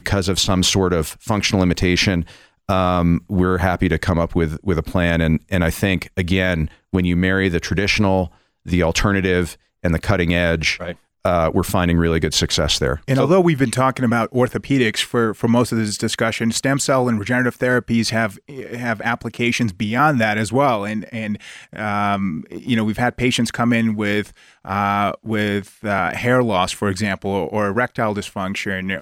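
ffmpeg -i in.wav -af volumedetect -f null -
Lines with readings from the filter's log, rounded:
mean_volume: -18.9 dB
max_volume: -5.0 dB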